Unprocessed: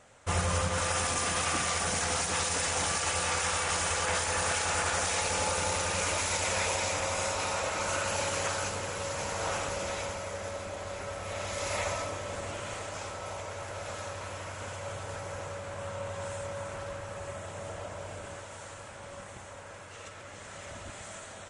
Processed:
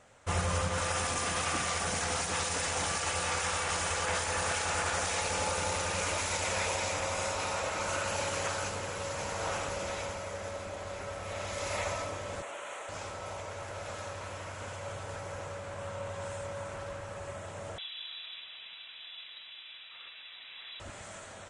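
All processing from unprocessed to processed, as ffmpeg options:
-filter_complex "[0:a]asettb=1/sr,asplit=3[a][b][c];[a]atrim=end=12.424[d];[b]atrim=start=12.42:end=12.89,asetpts=PTS-STARTPTS,afade=t=in:d=0.004:c=qsin,afade=t=out:st=0.466:d=0.004:c=qsin,highpass=500,equalizer=f=4.9k:w=3.1:g=-14.5[e];[c]atrim=start=12.886[f];[d][e]acrossfade=d=0.004:c1=hsin:c2=qsin[g];[g][f]acrossfade=d=0.004:c1=qsin:c2=hsin,asettb=1/sr,asplit=3[h][i][j];[h]atrim=end=17.784[k];[i]atrim=start=17.78:end=20.8,asetpts=PTS-STARTPTS,afade=t=in:d=0.004:c=qsin,afade=t=out:st=3.016:d=0.004:c=qsin,aemphasis=mode=reproduction:type=50fm,lowpass=f=3.4k:t=q:w=0.5098,lowpass=f=3.4k:t=q:w=0.6013,lowpass=f=3.4k:t=q:w=0.9,lowpass=f=3.4k:t=q:w=2.563,afreqshift=-4000[l];[j]atrim=start=20.796[m];[k][l]acrossfade=d=0.004:c1=hsin:c2=qsin[n];[n][m]acrossfade=d=0.004:c1=qsin:c2=hsin,highshelf=f=6.8k:g=-3.5,acontrast=38,volume=-7dB"

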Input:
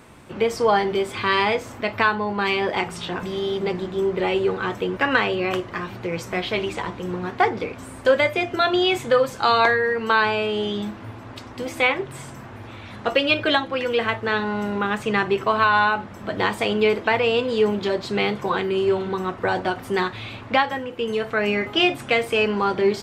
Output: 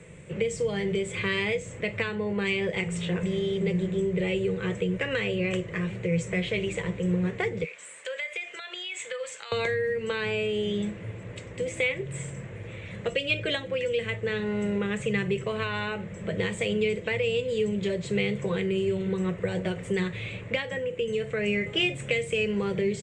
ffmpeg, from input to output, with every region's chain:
-filter_complex "[0:a]asettb=1/sr,asplit=3[a][b][c];[a]atrim=end=7.644[d];[b]atrim=start=7.64:end=9.52,asetpts=PTS-STARTPTS,afade=t=in:d=0.004:c=qsin,afade=t=out:st=1.876:d=0.004:c=qsin,highpass=1.1k,equalizer=f=4k:t=o:w=1.6:g=3,acompressor=threshold=-28dB:ratio=16:attack=3.2:release=140:knee=1:detection=peak[e];[c]atrim=start=9.516[f];[d][e]acrossfade=d=0.004:c1=hsin:c2=qsin[g];[g][f]acrossfade=d=0.004:c1=qsin:c2=hsin,firequalizer=gain_entry='entry(110,0);entry(170,9);entry(240,-12);entry(490,6);entry(750,-14);entry(1400,-11);entry(2000,2);entry(4900,-14);entry(7700,5);entry(12000,-28)':delay=0.05:min_phase=1,acrossover=split=240|3000[h][i][j];[i]acompressor=threshold=-28dB:ratio=6[k];[h][k][j]amix=inputs=3:normalize=0"

